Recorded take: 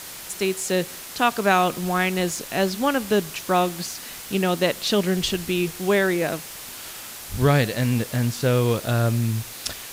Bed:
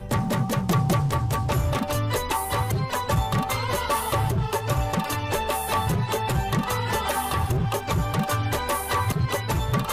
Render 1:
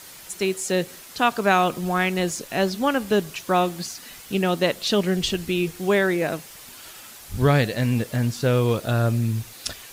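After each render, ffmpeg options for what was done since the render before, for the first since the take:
-af "afftdn=nr=7:nf=-38"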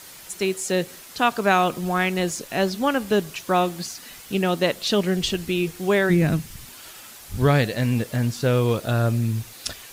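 -filter_complex "[0:a]asplit=3[a][b][c];[a]afade=t=out:st=6.09:d=0.02[d];[b]asubboost=boost=10.5:cutoff=170,afade=t=in:st=6.09:d=0.02,afade=t=out:st=6.65:d=0.02[e];[c]afade=t=in:st=6.65:d=0.02[f];[d][e][f]amix=inputs=3:normalize=0"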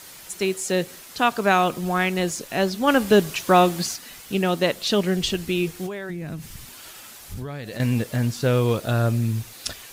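-filter_complex "[0:a]asplit=3[a][b][c];[a]afade=t=out:st=2.87:d=0.02[d];[b]acontrast=31,afade=t=in:st=2.87:d=0.02,afade=t=out:st=3.95:d=0.02[e];[c]afade=t=in:st=3.95:d=0.02[f];[d][e][f]amix=inputs=3:normalize=0,asettb=1/sr,asplit=3[g][h][i];[g]atrim=end=5.864[j];[h]atrim=start=5.86:end=7.8,asetpts=PTS-STARTPTS,afade=t=in:d=0.004:c=qsin,afade=t=out:st=1.936:d=0.004:c=qsin,acompressor=threshold=-28dB:ratio=10:attack=3.2:release=140:knee=1:detection=peak[k];[i]atrim=start=7.796[l];[j][k]acrossfade=d=0.004:c1=hsin:c2=qsin[m];[m][l]acrossfade=d=0.004:c1=qsin:c2=hsin"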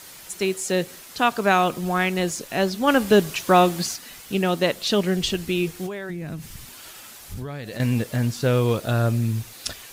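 -af anull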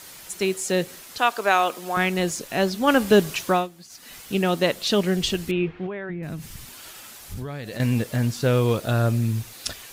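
-filter_complex "[0:a]asettb=1/sr,asplit=3[a][b][c];[a]atrim=end=1.184[d];[b]atrim=start=1.18:end=1.97,asetpts=PTS-STARTPTS,afade=t=in:d=0.004:c=qsin,afade=t=out:st=0.786:d=0.004:c=qsin,highpass=430[e];[c]atrim=start=1.966[f];[d][e]acrossfade=d=0.004:c1=hsin:c2=qsin[g];[g][f]acrossfade=d=0.004:c1=qsin:c2=hsin,asettb=1/sr,asplit=3[h][i][j];[h]atrim=end=5.514[k];[i]atrim=start=5.51:end=6.23,asetpts=PTS-STARTPTS,afade=t=in:d=0.004:c=qsin,afade=t=out:st=0.716:d=0.004:c=qsin,lowpass=f=2.7k:w=0.5412,lowpass=f=2.7k:w=1.3066[l];[j]atrim=start=6.226[m];[k][l]acrossfade=d=0.004:c1=hsin:c2=qsin[n];[n][m]acrossfade=d=0.004:c1=qsin:c2=hsin,asplit=3[o][p][q];[o]atrim=end=3.68,asetpts=PTS-STARTPTS,afade=t=out:st=3.42:d=0.26:silence=0.1[r];[p]atrim=start=3.68:end=3.89,asetpts=PTS-STARTPTS,volume=-20dB[s];[q]atrim=start=3.89,asetpts=PTS-STARTPTS,afade=t=in:d=0.26:silence=0.1[t];[r][s][t]concat=n=3:v=0:a=1"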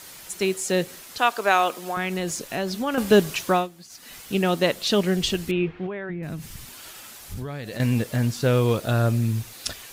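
-filter_complex "[0:a]asettb=1/sr,asplit=3[a][b][c];[a]atrim=end=1.864[d];[b]atrim=start=1.86:end=2.98,asetpts=PTS-STARTPTS,afade=t=in:d=0.004:c=qsin,afade=t=out:st=1.116:d=0.004:c=qsin,acompressor=threshold=-23dB:ratio=3:attack=3.2:release=140:knee=1:detection=peak[e];[c]atrim=start=2.976[f];[d][e]acrossfade=d=0.004:c1=hsin:c2=qsin[g];[g][f]acrossfade=d=0.004:c1=qsin:c2=hsin"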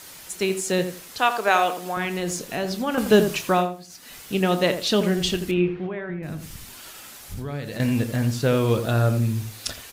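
-filter_complex "[0:a]asplit=2[a][b];[b]adelay=28,volume=-13.5dB[c];[a][c]amix=inputs=2:normalize=0,asplit=2[d][e];[e]adelay=84,lowpass=f=1.3k:p=1,volume=-8dB,asplit=2[f][g];[g]adelay=84,lowpass=f=1.3k:p=1,volume=0.19,asplit=2[h][i];[i]adelay=84,lowpass=f=1.3k:p=1,volume=0.19[j];[f][h][j]amix=inputs=3:normalize=0[k];[d][k]amix=inputs=2:normalize=0"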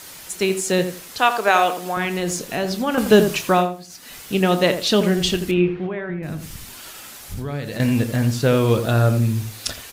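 -af "volume=3.5dB,alimiter=limit=-2dB:level=0:latency=1"

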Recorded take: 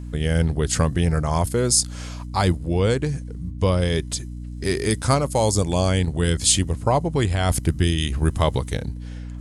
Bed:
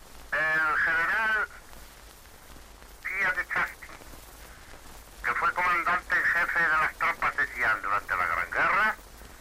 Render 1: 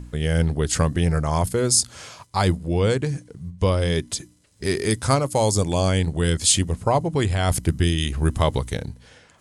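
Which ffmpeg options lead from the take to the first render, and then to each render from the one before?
-af "bandreject=f=60:t=h:w=4,bandreject=f=120:t=h:w=4,bandreject=f=180:t=h:w=4,bandreject=f=240:t=h:w=4,bandreject=f=300:t=h:w=4"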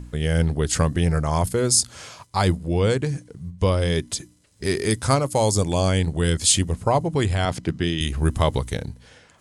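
-filter_complex "[0:a]asettb=1/sr,asplit=3[a][b][c];[a]atrim=end=7.454[d];[b]atrim=start=7.45:end=8.01,asetpts=PTS-STARTPTS,afade=t=in:d=0.004:c=qsin,afade=t=out:st=0.556:d=0.004:c=qsin,highpass=140,lowpass=4.8k[e];[c]atrim=start=8.006[f];[d][e]acrossfade=d=0.004:c1=hsin:c2=qsin[g];[g][f]acrossfade=d=0.004:c1=qsin:c2=hsin"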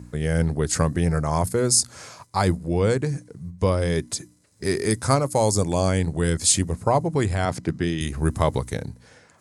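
-af "highpass=84,equalizer=f=3.1k:t=o:w=0.55:g=-9"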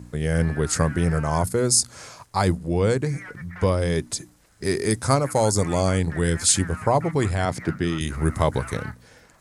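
-filter_complex "[1:a]volume=-14.5dB[a];[0:a][a]amix=inputs=2:normalize=0"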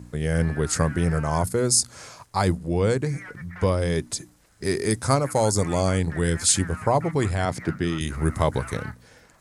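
-af "volume=-1dB"

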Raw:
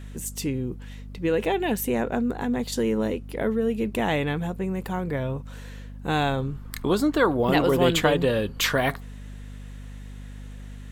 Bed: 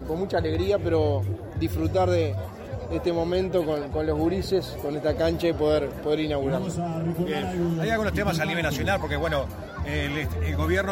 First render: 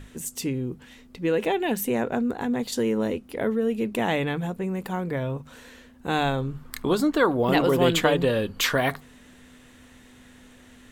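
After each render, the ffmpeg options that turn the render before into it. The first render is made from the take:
-af "bandreject=f=50:t=h:w=6,bandreject=f=100:t=h:w=6,bandreject=f=150:t=h:w=6,bandreject=f=200:t=h:w=6"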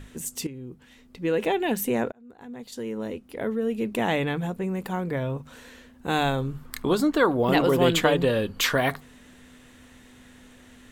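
-filter_complex "[0:a]asettb=1/sr,asplit=3[a][b][c];[a]atrim=end=6.084[d];[b]atrim=start=6.08:end=6.66,asetpts=PTS-STARTPTS,afade=t=in:d=0.004:c=qsin,afade=t=out:st=0.576:d=0.004:c=qsin,highshelf=f=7.9k:g=7[e];[c]atrim=start=6.656[f];[d][e]acrossfade=d=0.004:c1=hsin:c2=qsin[g];[g][f]acrossfade=d=0.004:c1=qsin:c2=hsin,asplit=3[h][i][j];[h]atrim=end=0.47,asetpts=PTS-STARTPTS,afade=t=out:st=0.466:d=0.004:c=hsin:silence=0.211349[k];[i]atrim=start=0.47:end=2.12,asetpts=PTS-STARTPTS,afade=t=in:d=1:silence=0.211349,afade=t=out:st=1.646:d=0.004:c=hsin[l];[j]atrim=start=2.12,asetpts=PTS-STARTPTS,afade=t=in:d=1.94[m];[k][l][m]concat=n=3:v=0:a=1"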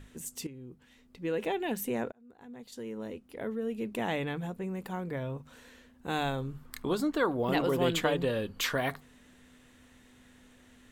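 -af "volume=-7.5dB"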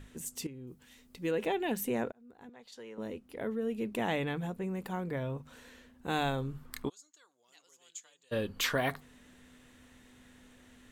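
-filter_complex "[0:a]asettb=1/sr,asplit=3[a][b][c];[a]atrim=end=0.674[d];[b]atrim=start=0.67:end=1.31,asetpts=PTS-STARTPTS,afade=t=in:d=0.004:c=qsin,afade=t=out:st=0.636:d=0.004:c=qsin,highshelf=f=4.9k:g=12[e];[c]atrim=start=1.306[f];[d][e]acrossfade=d=0.004:c1=hsin:c2=qsin[g];[g][f]acrossfade=d=0.004:c1=qsin:c2=hsin,asettb=1/sr,asplit=3[h][i][j];[h]atrim=end=2.494[k];[i]atrim=start=2.49:end=2.98,asetpts=PTS-STARTPTS,afade=t=in:d=0.004:c=qsin,afade=t=out:st=0.486:d=0.004:c=qsin,acrossover=split=510 6600:gain=0.224 1 0.224[l][m][n];[l][m][n]amix=inputs=3:normalize=0[o];[j]atrim=start=2.976[p];[k][o]acrossfade=d=0.004:c1=hsin:c2=qsin[q];[q][p]acrossfade=d=0.004:c1=qsin:c2=hsin,asplit=3[r][s][t];[r]afade=t=out:st=6.88:d=0.02[u];[s]bandpass=f=6.7k:t=q:w=9,afade=t=in:st=6.88:d=0.02,afade=t=out:st=8.31:d=0.02[v];[t]afade=t=in:st=8.31:d=0.02[w];[u][v][w]amix=inputs=3:normalize=0"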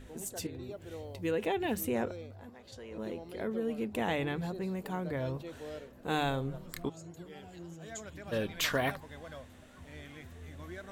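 -filter_complex "[1:a]volume=-21.5dB[a];[0:a][a]amix=inputs=2:normalize=0"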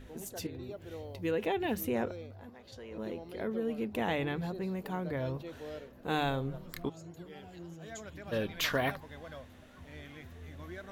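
-af "equalizer=f=8.2k:w=2.3:g=-8"

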